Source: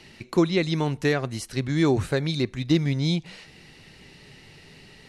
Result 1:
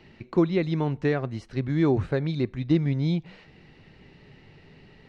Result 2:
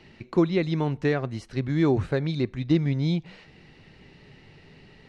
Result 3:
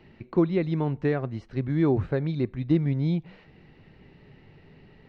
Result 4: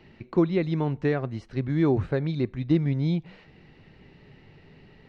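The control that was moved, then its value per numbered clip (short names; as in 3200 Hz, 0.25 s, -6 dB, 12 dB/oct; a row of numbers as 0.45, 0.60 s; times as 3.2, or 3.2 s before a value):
tape spacing loss, at 10 kHz: 29, 21, 46, 37 dB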